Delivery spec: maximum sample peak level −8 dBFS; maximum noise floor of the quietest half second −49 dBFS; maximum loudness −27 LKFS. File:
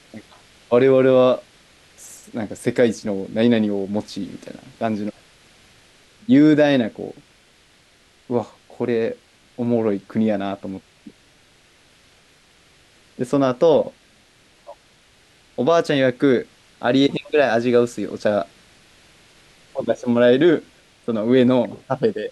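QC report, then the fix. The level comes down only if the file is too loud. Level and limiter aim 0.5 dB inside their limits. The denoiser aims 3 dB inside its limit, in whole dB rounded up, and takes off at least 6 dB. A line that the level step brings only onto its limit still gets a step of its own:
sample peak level −5.5 dBFS: out of spec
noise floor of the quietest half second −55 dBFS: in spec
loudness −19.5 LKFS: out of spec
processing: level −8 dB

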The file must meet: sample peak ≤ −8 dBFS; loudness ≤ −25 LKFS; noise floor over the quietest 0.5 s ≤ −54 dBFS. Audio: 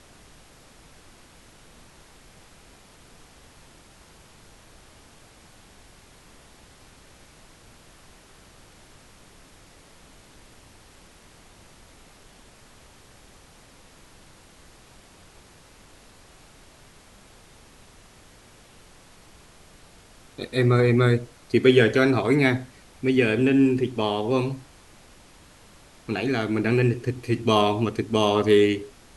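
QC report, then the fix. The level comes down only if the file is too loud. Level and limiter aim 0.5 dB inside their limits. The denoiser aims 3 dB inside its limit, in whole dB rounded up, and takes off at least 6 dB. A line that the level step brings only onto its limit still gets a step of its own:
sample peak −5.0 dBFS: out of spec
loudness −22.0 LKFS: out of spec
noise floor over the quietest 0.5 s −51 dBFS: out of spec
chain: level −3.5 dB

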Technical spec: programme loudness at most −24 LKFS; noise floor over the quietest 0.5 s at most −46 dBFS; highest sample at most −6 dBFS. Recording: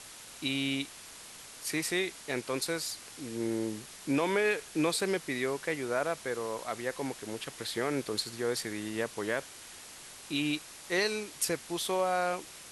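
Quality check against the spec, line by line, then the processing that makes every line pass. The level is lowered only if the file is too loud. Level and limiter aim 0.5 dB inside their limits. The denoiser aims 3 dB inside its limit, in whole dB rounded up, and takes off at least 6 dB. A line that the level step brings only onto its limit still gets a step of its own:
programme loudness −33.0 LKFS: in spec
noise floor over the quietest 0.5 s −49 dBFS: in spec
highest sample −16.0 dBFS: in spec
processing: no processing needed

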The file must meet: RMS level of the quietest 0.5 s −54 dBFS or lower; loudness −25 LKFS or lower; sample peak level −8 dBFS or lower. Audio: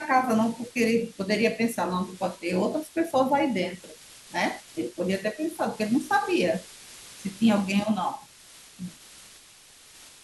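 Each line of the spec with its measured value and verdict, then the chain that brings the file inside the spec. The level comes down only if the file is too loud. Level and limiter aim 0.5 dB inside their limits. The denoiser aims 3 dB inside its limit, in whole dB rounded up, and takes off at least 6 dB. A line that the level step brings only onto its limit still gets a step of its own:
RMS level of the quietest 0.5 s −52 dBFS: out of spec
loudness −26.5 LKFS: in spec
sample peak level −9.0 dBFS: in spec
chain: broadband denoise 6 dB, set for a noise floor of −52 dBFS

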